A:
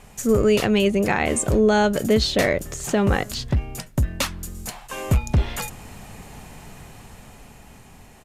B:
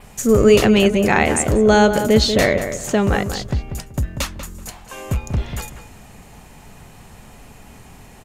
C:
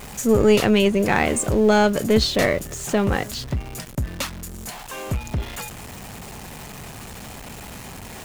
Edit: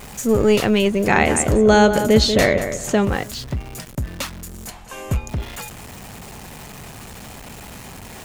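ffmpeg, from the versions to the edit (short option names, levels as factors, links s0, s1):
-filter_complex "[1:a]asplit=2[s0][s1];[2:a]asplit=3[s2][s3][s4];[s2]atrim=end=1.072[s5];[s0]atrim=start=1.068:end=3.052[s6];[s3]atrim=start=3.048:end=4.702[s7];[s1]atrim=start=4.698:end=5.292[s8];[s4]atrim=start=5.288[s9];[s5][s6]acrossfade=d=0.004:c1=hsin:c2=hsin[s10];[s10][s7]acrossfade=d=0.004:c1=hsin:c2=hsin[s11];[s11][s8]acrossfade=d=0.004:c1=hsin:c2=hsin[s12];[s12][s9]acrossfade=d=0.004:c1=hsin:c2=hsin"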